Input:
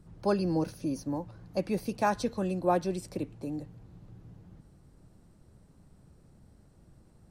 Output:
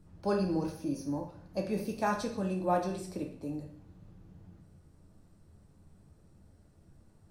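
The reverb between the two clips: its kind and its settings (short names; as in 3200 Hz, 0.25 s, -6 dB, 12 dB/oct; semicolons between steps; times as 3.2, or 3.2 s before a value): plate-style reverb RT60 0.59 s, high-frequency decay 0.9×, pre-delay 0 ms, DRR 1.5 dB; gain -4.5 dB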